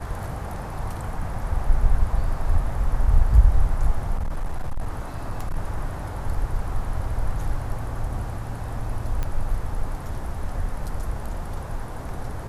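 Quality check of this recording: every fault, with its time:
4.15–5.56 s: clipped -21.5 dBFS
9.23 s: pop -15 dBFS

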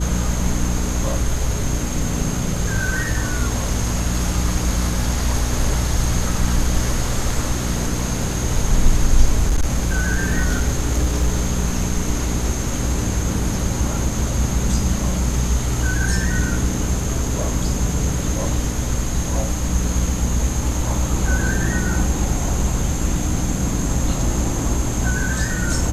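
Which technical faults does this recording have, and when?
hum 60 Hz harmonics 5 -24 dBFS
9.48–11.52 s: clipped -12 dBFS

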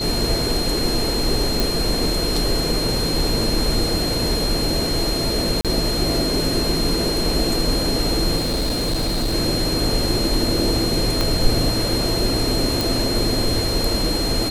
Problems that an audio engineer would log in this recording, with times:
whine 4.2 kHz -24 dBFS
1.60 s: pop
5.61–5.65 s: dropout 37 ms
8.36–9.35 s: clipped -17.5 dBFS
11.21 s: pop -6 dBFS
12.81 s: pop

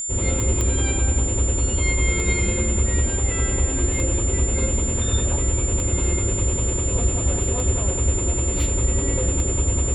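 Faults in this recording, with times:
tick 33 1/3 rpm -14 dBFS
whine 7.2 kHz -25 dBFS
0.61 s: pop -11 dBFS

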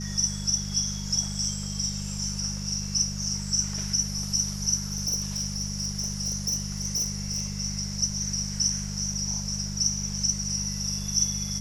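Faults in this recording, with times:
hum 50 Hz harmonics 4 -34 dBFS
4.92–7.52 s: clipped -23 dBFS

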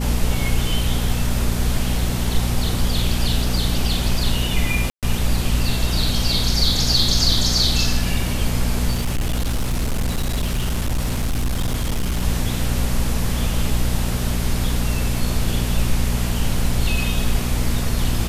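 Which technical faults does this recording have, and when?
hum 60 Hz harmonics 4 -23 dBFS
4.90–5.03 s: dropout 127 ms
8.91–12.22 s: clipped -17 dBFS

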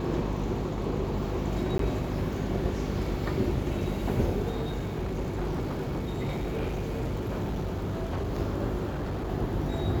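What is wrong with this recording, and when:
crackle 12 per s
hum 50 Hz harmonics 8 -34 dBFS
1.78–1.79 s: dropout
4.50–8.34 s: clipped -27 dBFS
8.88–9.30 s: clipped -28.5 dBFS

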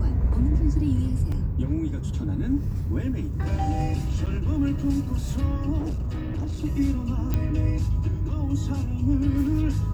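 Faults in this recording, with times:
1.32 s: dropout 2.8 ms
4.26–4.27 s: dropout 6.2 ms
5.78–6.65 s: clipped -24.5 dBFS
7.34 s: pop -13 dBFS

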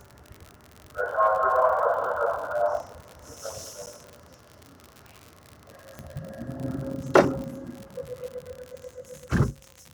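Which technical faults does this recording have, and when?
crackle 77 per s -33 dBFS
3.86–3.87 s: dropout 9.6 ms
5.99 s: pop -23 dBFS

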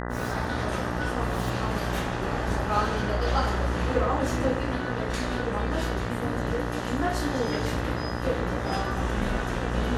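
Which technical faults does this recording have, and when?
buzz 60 Hz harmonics 33 -32 dBFS

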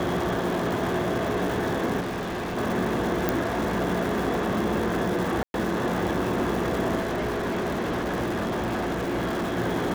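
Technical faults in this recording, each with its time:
crackle 460 per s -30 dBFS
2.00–2.58 s: clipped -27.5 dBFS
3.29 s: pop
5.43–5.54 s: dropout 111 ms
7.00–9.59 s: clipped -23.5 dBFS

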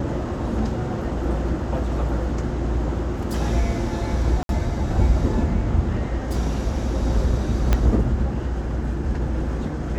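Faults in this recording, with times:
4.43–4.49 s: dropout 62 ms
7.73 s: pop -6 dBFS

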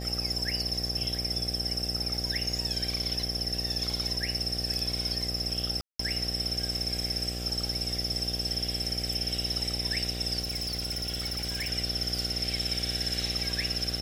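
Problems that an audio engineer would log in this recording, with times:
buzz 60 Hz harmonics 13 -36 dBFS
5.81–5.99 s: dropout 184 ms
10.40–11.70 s: clipped -28.5 dBFS

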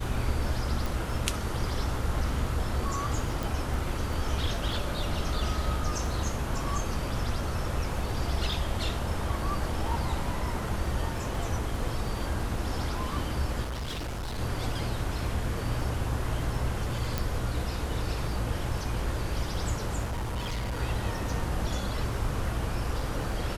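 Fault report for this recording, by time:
crackle 12 per s -36 dBFS
0.86 s: pop
3.43 s: pop
13.62–14.39 s: clipped -31 dBFS
17.18 s: pop
20.04–20.80 s: clipped -28.5 dBFS

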